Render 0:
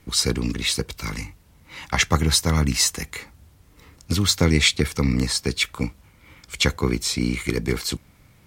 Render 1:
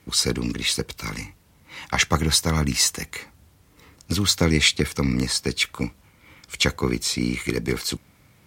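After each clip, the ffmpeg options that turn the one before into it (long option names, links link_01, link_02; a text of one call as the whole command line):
ffmpeg -i in.wav -af "highpass=frequency=99:poles=1" out.wav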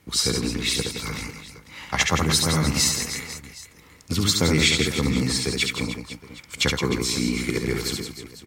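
ffmpeg -i in.wav -af "aecho=1:1:70|168|305.2|497.3|766.2:0.631|0.398|0.251|0.158|0.1,volume=-2dB" out.wav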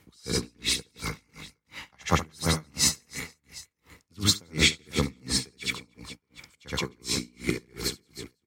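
ffmpeg -i in.wav -af "aeval=exprs='val(0)*pow(10,-36*(0.5-0.5*cos(2*PI*2.8*n/s))/20)':channel_layout=same" out.wav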